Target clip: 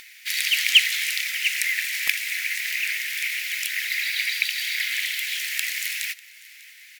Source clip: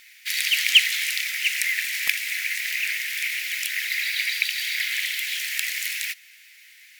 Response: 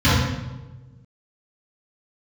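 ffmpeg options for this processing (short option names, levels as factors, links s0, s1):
-filter_complex "[0:a]asplit=2[s0][s1];[s1]aecho=0:1:596:0.075[s2];[s0][s2]amix=inputs=2:normalize=0,acompressor=mode=upward:threshold=0.00891:ratio=2.5"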